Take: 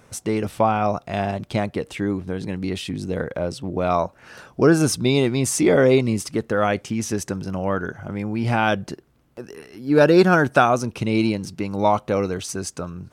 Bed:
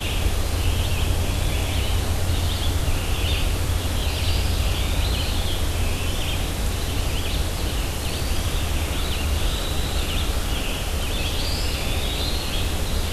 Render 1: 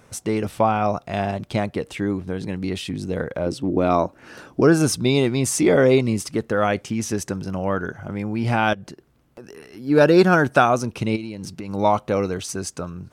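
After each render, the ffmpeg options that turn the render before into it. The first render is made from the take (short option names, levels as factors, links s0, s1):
-filter_complex "[0:a]asettb=1/sr,asplit=3[s0][s1][s2];[s0]atrim=end=3.464[s3];[s1]atrim=start=3.46:end=4.61,asetpts=PTS-STARTPTS,afade=t=in:d=0.004:c=qsin,afade=t=out:st=1.146:d=0.004:c=qsin,equalizer=f=300:t=o:w=0.77:g=10.5[s4];[s2]atrim=start=4.606[s5];[s3][s4]acrossfade=d=0.004:c1=hsin:c2=qsin[s6];[s6][s5]acrossfade=d=0.004:c1=qsin:c2=hsin,asettb=1/sr,asplit=3[s7][s8][s9];[s7]atrim=end=8.734[s10];[s8]atrim=start=8.73:end=9.71,asetpts=PTS-STARTPTS,afade=t=in:d=0.004:c=qsin,afade=t=out:st=0.976:d=0.004:c=qsin,acompressor=threshold=0.0158:ratio=3:attack=3.2:release=140:knee=1:detection=peak[s11];[s9]atrim=start=9.706[s12];[s10][s11]acrossfade=d=0.004:c1=hsin:c2=qsin[s13];[s13][s12]acrossfade=d=0.004:c1=qsin:c2=hsin,asplit=3[s14][s15][s16];[s14]afade=t=out:st=11.15:d=0.02[s17];[s15]acompressor=threshold=0.0447:ratio=12:attack=3.2:release=140:knee=1:detection=peak,afade=t=in:st=11.15:d=0.02,afade=t=out:st=11.68:d=0.02[s18];[s16]afade=t=in:st=11.68:d=0.02[s19];[s17][s18][s19]amix=inputs=3:normalize=0"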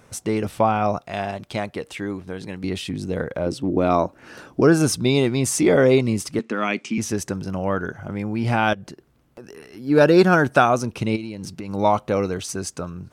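-filter_complex "[0:a]asettb=1/sr,asplit=3[s0][s1][s2];[s0]atrim=end=1.014[s3];[s1]atrim=start=1.01:end=2.64,asetpts=PTS-STARTPTS,afade=t=in:d=0.004:c=qsin,afade=t=out:st=1.626:d=0.004:c=qsin,lowshelf=f=450:g=-7[s4];[s2]atrim=start=2.636[s5];[s3][s4]acrossfade=d=0.004:c1=hsin:c2=qsin[s6];[s6][s5]acrossfade=d=0.004:c1=qsin:c2=hsin,asettb=1/sr,asplit=3[s7][s8][s9];[s7]atrim=end=6.394[s10];[s8]atrim=start=6.39:end=6.98,asetpts=PTS-STARTPTS,afade=t=in:d=0.004:c=qsin,afade=t=out:st=0.586:d=0.004:c=qsin,highpass=f=200:w=0.5412,highpass=f=200:w=1.3066,equalizer=f=240:t=q:w=4:g=5,equalizer=f=520:t=q:w=4:g=-10,equalizer=f=760:t=q:w=4:g=-7,equalizer=f=1600:t=q:w=4:g=-4,equalizer=f=2400:t=q:w=4:g=9,lowpass=f=8000:w=0.5412,lowpass=f=8000:w=1.3066[s11];[s9]atrim=start=6.976[s12];[s10][s11]acrossfade=d=0.004:c1=hsin:c2=qsin[s13];[s13][s12]acrossfade=d=0.004:c1=qsin:c2=hsin"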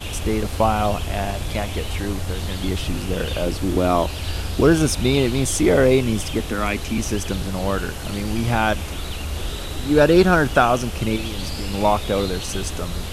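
-filter_complex "[1:a]volume=0.596[s0];[0:a][s0]amix=inputs=2:normalize=0"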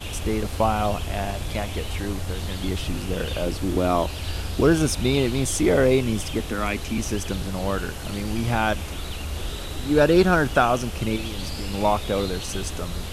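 -af "volume=0.708"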